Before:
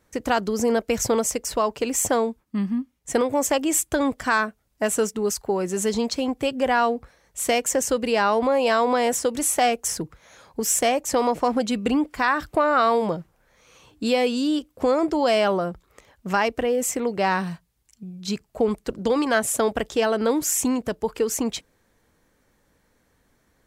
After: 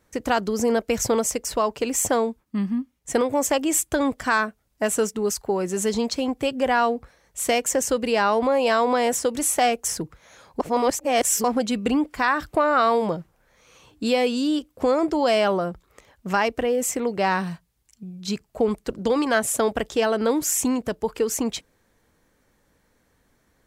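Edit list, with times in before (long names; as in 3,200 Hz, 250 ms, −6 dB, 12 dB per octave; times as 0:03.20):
0:10.60–0:11.44: reverse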